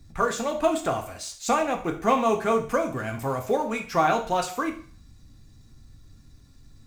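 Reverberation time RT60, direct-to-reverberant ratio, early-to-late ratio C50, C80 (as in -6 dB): 0.45 s, 2.5 dB, 10.5 dB, 14.5 dB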